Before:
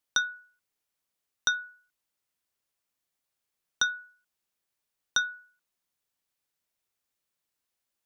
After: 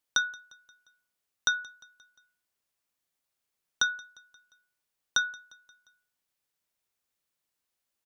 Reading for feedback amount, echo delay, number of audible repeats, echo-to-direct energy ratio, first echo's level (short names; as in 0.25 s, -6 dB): 55%, 0.176 s, 3, -22.0 dB, -23.5 dB